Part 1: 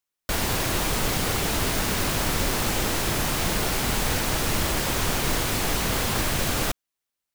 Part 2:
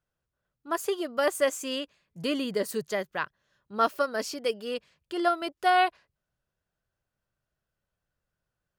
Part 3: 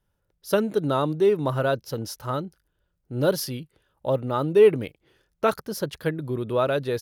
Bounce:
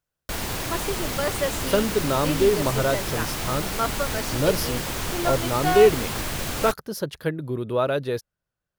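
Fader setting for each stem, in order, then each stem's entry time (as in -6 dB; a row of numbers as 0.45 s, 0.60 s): -4.0 dB, -1.5 dB, 0.0 dB; 0.00 s, 0.00 s, 1.20 s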